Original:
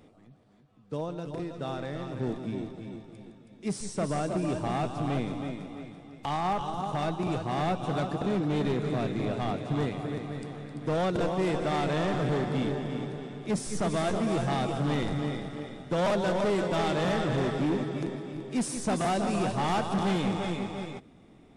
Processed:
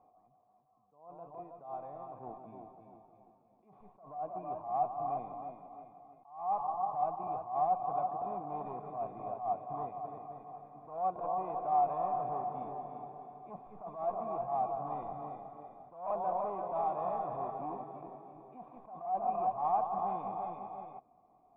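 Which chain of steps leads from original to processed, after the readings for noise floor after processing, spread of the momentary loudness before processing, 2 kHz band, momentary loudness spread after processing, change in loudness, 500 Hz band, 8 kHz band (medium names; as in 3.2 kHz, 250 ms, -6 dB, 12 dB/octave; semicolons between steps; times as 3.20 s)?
-68 dBFS, 11 LU, under -25 dB, 18 LU, -6.0 dB, -9.0 dB, under -35 dB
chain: cascade formant filter a; attacks held to a fixed rise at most 120 dB/s; trim +6.5 dB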